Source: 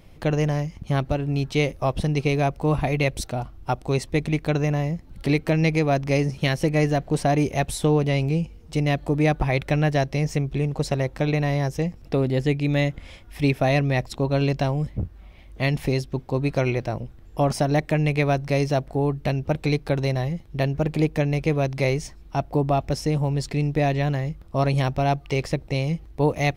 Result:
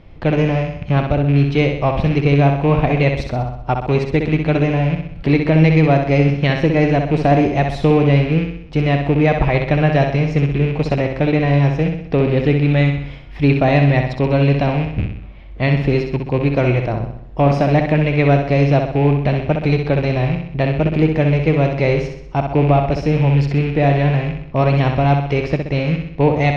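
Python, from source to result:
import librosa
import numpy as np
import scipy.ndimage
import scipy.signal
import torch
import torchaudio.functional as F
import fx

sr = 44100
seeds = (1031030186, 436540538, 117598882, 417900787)

y = fx.rattle_buzz(x, sr, strikes_db=-25.0, level_db=-25.0)
y = fx.air_absorb(y, sr, metres=240.0)
y = fx.room_flutter(y, sr, wall_m=10.9, rt60_s=0.66)
y = F.gain(torch.from_numpy(y), 6.5).numpy()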